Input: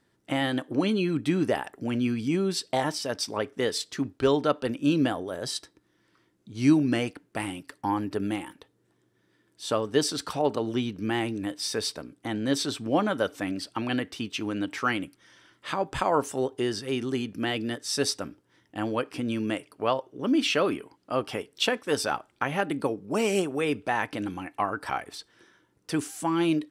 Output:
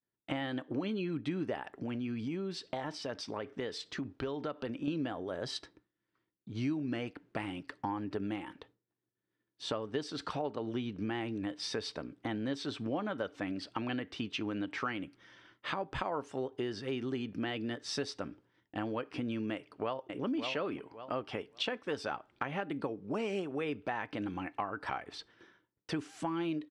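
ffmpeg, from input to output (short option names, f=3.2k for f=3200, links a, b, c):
-filter_complex "[0:a]asettb=1/sr,asplit=3[a][b][c];[a]atrim=end=1.734[d];[b]atrim=start=1.73:end=4.88,asetpts=PTS-STARTPTS,afade=t=in:d=0.004:c=qsin,afade=t=out:st=3.146:d=0.004:c=qsin,acompressor=threshold=-36dB:ratio=2:attack=3.2:release=140:knee=1:detection=peak[e];[c]atrim=start=4.876[f];[d][e]acrossfade=d=0.004:c1=hsin:c2=qsin[g];[g][f]acrossfade=d=0.004:c1=qsin:c2=hsin,asplit=2[h][i];[i]afade=t=in:st=19.53:d=0.01,afade=t=out:st=20.23:d=0.01,aecho=0:1:560|1120|1680:0.501187|0.0751781|0.0112767[j];[h][j]amix=inputs=2:normalize=0,lowpass=3.8k,agate=range=-33dB:threshold=-55dB:ratio=3:detection=peak,acompressor=threshold=-34dB:ratio=4"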